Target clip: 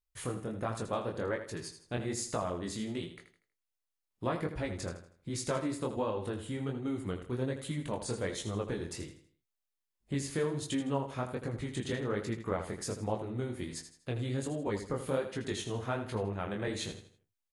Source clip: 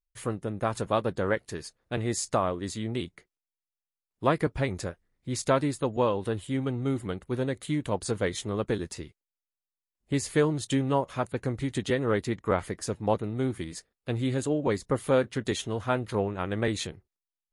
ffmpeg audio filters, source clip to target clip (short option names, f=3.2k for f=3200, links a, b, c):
-filter_complex "[0:a]acompressor=threshold=-37dB:ratio=2,flanger=delay=18:depth=6.9:speed=1.3,asplit=2[a][b];[b]aecho=0:1:80|160|240|320:0.316|0.114|0.041|0.0148[c];[a][c]amix=inputs=2:normalize=0,volume=3dB"